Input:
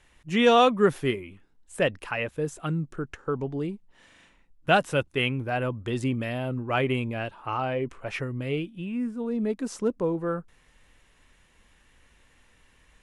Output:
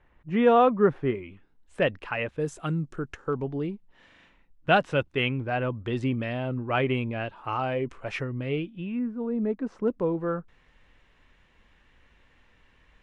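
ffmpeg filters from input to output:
ffmpeg -i in.wav -af "asetnsamples=nb_out_samples=441:pad=0,asendcmd='1.15 lowpass f 3600;2.4 lowpass f 8300;3.33 lowpass f 3900;7.36 lowpass f 7100;8.23 lowpass f 3600;8.99 lowpass f 1700;9.88 lowpass f 3600',lowpass=1500" out.wav

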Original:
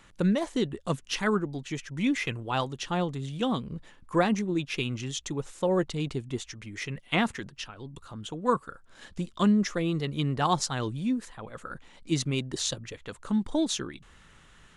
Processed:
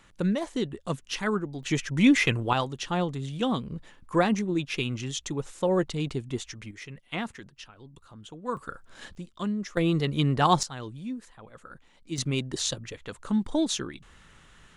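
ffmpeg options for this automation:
ffmpeg -i in.wav -af "asetnsamples=nb_out_samples=441:pad=0,asendcmd='1.63 volume volume 7.5dB;2.53 volume volume 1dB;6.71 volume volume -7dB;8.57 volume volume 4dB;9.15 volume volume -7.5dB;9.77 volume volume 4dB;10.63 volume volume -7dB;12.18 volume volume 1dB',volume=-1.5dB" out.wav

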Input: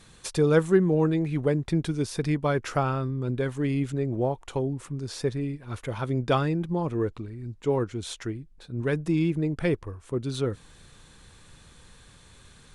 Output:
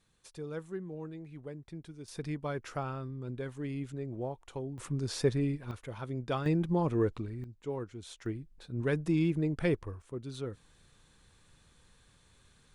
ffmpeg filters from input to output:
ffmpeg -i in.wav -af "asetnsamples=nb_out_samples=441:pad=0,asendcmd='2.08 volume volume -11dB;4.78 volume volume -0.5dB;5.71 volume volume -10dB;6.46 volume volume -1.5dB;7.44 volume volume -12dB;8.26 volume volume -4dB;10.02 volume volume -11dB',volume=-19.5dB" out.wav

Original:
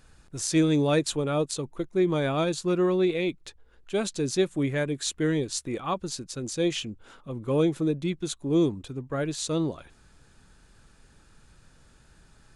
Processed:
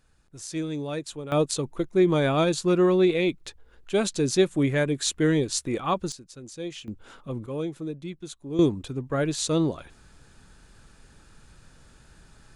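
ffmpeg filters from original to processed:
ffmpeg -i in.wav -af "asetnsamples=nb_out_samples=441:pad=0,asendcmd='1.32 volume volume 3.5dB;6.12 volume volume -9dB;6.88 volume volume 2.5dB;7.46 volume volume -7.5dB;8.59 volume volume 3.5dB',volume=-8.5dB" out.wav

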